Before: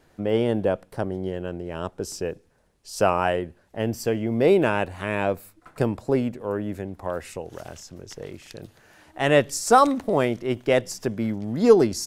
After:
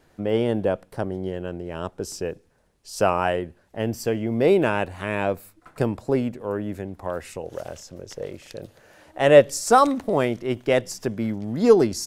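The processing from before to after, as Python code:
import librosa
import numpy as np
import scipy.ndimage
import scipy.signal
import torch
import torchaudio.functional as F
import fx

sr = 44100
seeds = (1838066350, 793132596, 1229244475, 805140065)

y = fx.peak_eq(x, sr, hz=540.0, db=9.0, octaves=0.49, at=(7.43, 9.65))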